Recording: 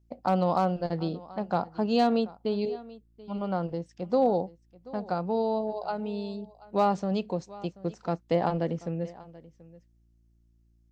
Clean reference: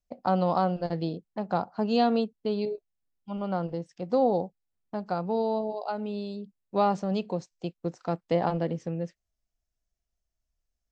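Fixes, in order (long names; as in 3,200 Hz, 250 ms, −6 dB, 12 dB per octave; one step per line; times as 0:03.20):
clipped peaks rebuilt −14 dBFS
hum removal 57 Hz, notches 6
echo removal 733 ms −20 dB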